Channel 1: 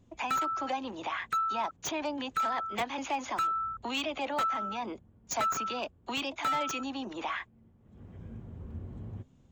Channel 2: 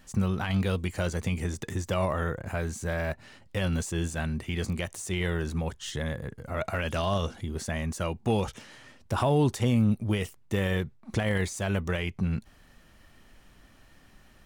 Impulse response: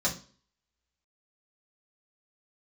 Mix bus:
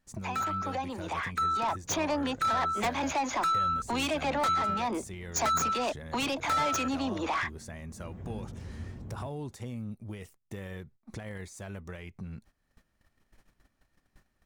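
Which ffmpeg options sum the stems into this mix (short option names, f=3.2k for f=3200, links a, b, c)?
-filter_complex "[0:a]dynaudnorm=f=170:g=17:m=8dB,asoftclip=type=tanh:threshold=-23.5dB,adelay=50,volume=-0.5dB[a];[1:a]acompressor=threshold=-43dB:ratio=2,volume=-3dB[b];[a][b]amix=inputs=2:normalize=0,agate=range=-16dB:threshold=-55dB:ratio=16:detection=peak,equalizer=f=3k:w=3.8:g=-5.5"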